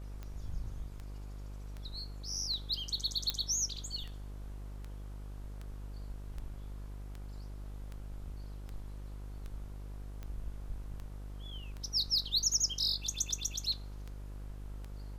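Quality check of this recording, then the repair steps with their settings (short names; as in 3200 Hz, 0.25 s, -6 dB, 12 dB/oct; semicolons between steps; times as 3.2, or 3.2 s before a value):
buzz 50 Hz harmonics 32 -44 dBFS
tick 78 rpm -31 dBFS
3.3 pop -16 dBFS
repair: de-click; de-hum 50 Hz, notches 32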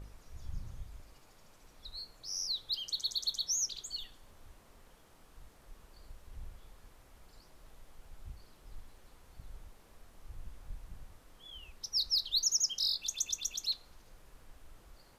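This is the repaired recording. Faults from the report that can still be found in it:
none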